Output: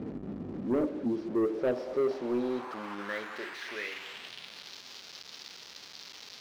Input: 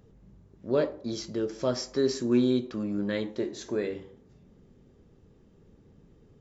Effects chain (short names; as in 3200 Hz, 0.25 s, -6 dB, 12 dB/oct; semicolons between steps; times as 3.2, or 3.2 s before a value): delta modulation 32 kbps, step -32 dBFS; band-pass sweep 270 Hz -> 4600 Hz, 1.05–4.81; sample leveller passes 2